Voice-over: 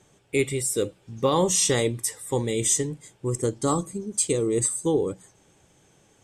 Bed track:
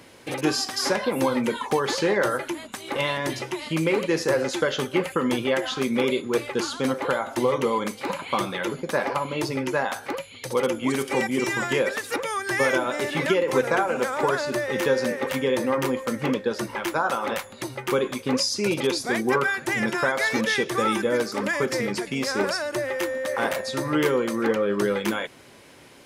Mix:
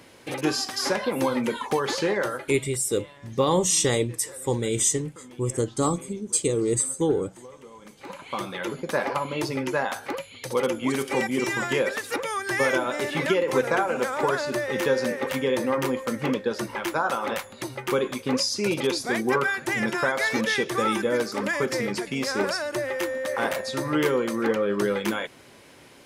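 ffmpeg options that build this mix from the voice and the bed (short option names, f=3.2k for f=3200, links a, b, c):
-filter_complex "[0:a]adelay=2150,volume=0dB[a];[1:a]volume=20.5dB,afade=t=out:st=2.01:d=0.81:silence=0.0841395,afade=t=in:st=7.8:d=1.08:silence=0.0794328[b];[a][b]amix=inputs=2:normalize=0"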